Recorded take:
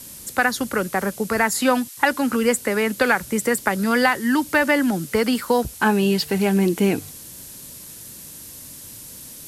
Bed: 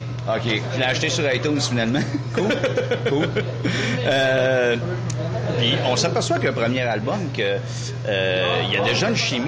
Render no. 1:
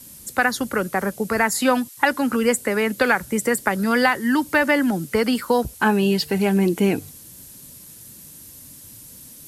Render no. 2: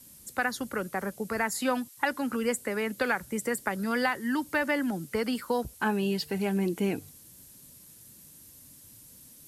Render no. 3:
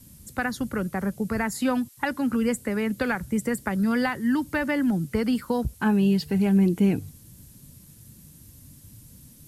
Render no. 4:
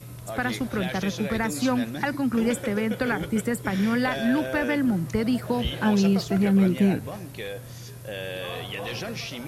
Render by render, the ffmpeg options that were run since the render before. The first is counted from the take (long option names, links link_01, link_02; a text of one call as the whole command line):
ffmpeg -i in.wav -af "afftdn=noise_reduction=6:noise_floor=-40" out.wav
ffmpeg -i in.wav -af "volume=-9.5dB" out.wav
ffmpeg -i in.wav -af "bass=frequency=250:gain=14,treble=frequency=4000:gain=-1" out.wav
ffmpeg -i in.wav -i bed.wav -filter_complex "[1:a]volume=-13dB[link_01];[0:a][link_01]amix=inputs=2:normalize=0" out.wav